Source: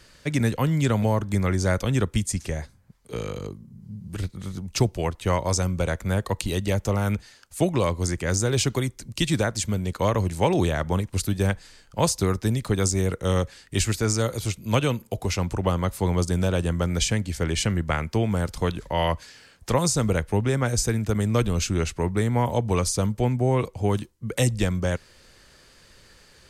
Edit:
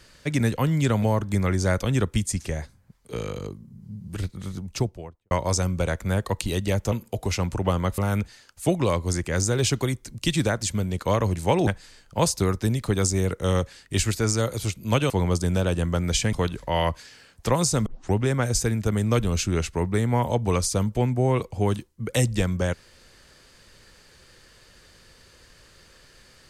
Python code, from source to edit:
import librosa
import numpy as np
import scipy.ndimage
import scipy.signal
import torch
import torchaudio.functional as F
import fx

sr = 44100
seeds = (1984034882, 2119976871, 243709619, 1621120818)

y = fx.studio_fade_out(x, sr, start_s=4.5, length_s=0.81)
y = fx.edit(y, sr, fx.cut(start_s=10.61, length_s=0.87),
    fx.move(start_s=14.91, length_s=1.06, to_s=6.92),
    fx.cut(start_s=17.2, length_s=1.36),
    fx.tape_start(start_s=20.09, length_s=0.27), tone=tone)